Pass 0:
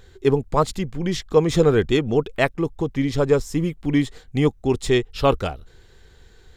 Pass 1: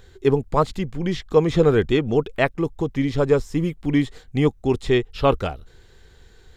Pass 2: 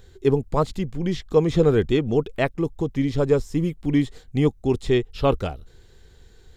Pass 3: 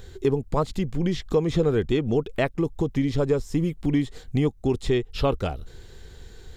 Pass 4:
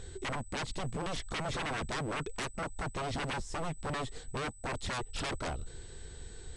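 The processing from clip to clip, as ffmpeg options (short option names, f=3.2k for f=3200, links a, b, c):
-filter_complex "[0:a]acrossover=split=4000[a][b];[b]acompressor=threshold=-45dB:ratio=4:attack=1:release=60[c];[a][c]amix=inputs=2:normalize=0"
-af "equalizer=f=1.5k:t=o:w=2.5:g=-5"
-af "acompressor=threshold=-30dB:ratio=2.5,volume=6.5dB"
-af "aeval=exprs='0.0422*(abs(mod(val(0)/0.0422+3,4)-2)-1)':c=same,aeval=exprs='val(0)+0.00251*sin(2*PI*8000*n/s)':c=same,aresample=22050,aresample=44100,volume=-3dB"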